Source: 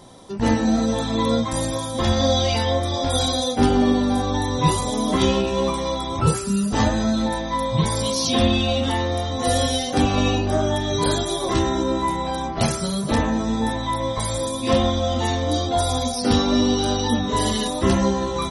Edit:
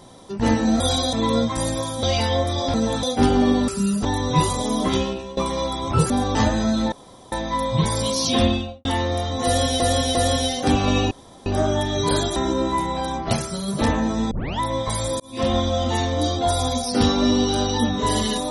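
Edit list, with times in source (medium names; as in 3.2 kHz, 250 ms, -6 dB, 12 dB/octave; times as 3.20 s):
0.80–1.09 s: swap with 3.10–3.43 s
1.99–2.39 s: delete
4.08–4.33 s: swap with 6.38–6.75 s
5.04–5.65 s: fade out, to -18 dB
7.32 s: insert room tone 0.40 s
8.41–8.85 s: studio fade out
9.45–9.80 s: loop, 3 plays
10.41 s: insert room tone 0.35 s
11.31–11.66 s: delete
12.63–12.98 s: gain -3.5 dB
13.61 s: tape start 0.29 s
14.50–14.88 s: fade in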